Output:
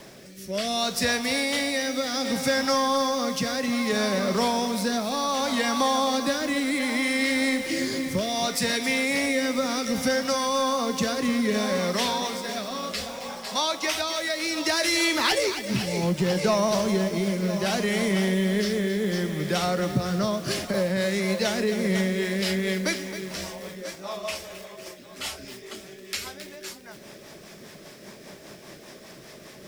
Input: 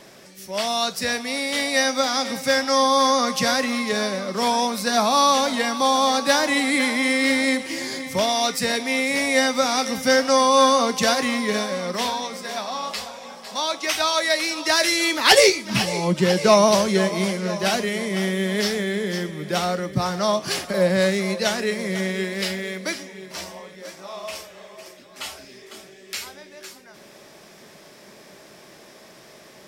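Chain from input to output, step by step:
low-shelf EQ 170 Hz +6 dB
downward compressor 6 to 1, threshold −22 dBFS, peak gain reduction 12.5 dB
rotating-speaker cabinet horn 0.65 Hz, later 5 Hz, at 0:21.51
bit-depth reduction 10 bits, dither none
in parallel at −7 dB: hard clipping −25 dBFS, distortion −12 dB
on the sum: feedback echo at a low word length 268 ms, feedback 55%, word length 6 bits, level −10 dB

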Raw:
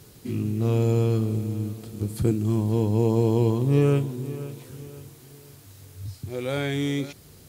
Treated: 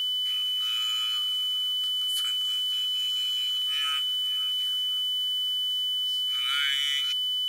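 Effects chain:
steady tone 3,000 Hz −30 dBFS
linear-phase brick-wall high-pass 1,200 Hz
level +5 dB

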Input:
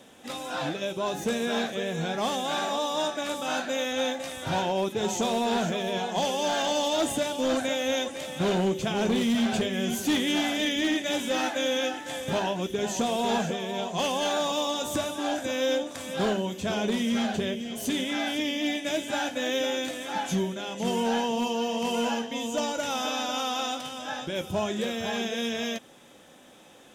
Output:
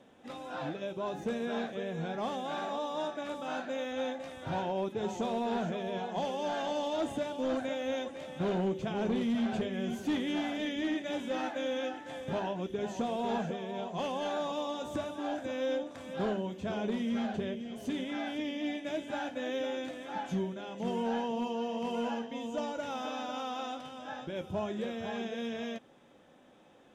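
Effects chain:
low-pass filter 1,500 Hz 6 dB per octave
level −5.5 dB

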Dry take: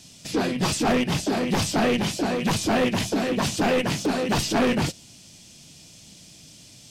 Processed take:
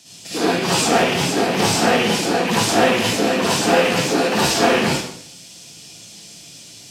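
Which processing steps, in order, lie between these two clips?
high-pass filter 410 Hz 6 dB per octave
convolution reverb RT60 0.65 s, pre-delay 51 ms, DRR −8.5 dB

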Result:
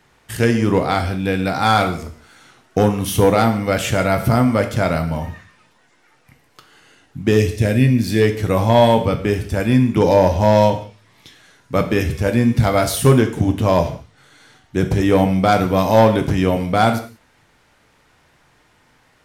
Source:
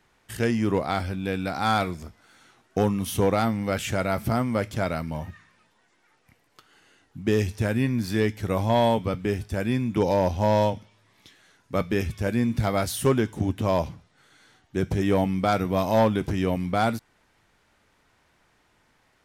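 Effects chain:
0:07.37–0:08.22: flat-topped bell 1,100 Hz −9.5 dB 1.1 octaves
reverb whose tail is shaped and stops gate 210 ms falling, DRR 6.5 dB
level +7.5 dB

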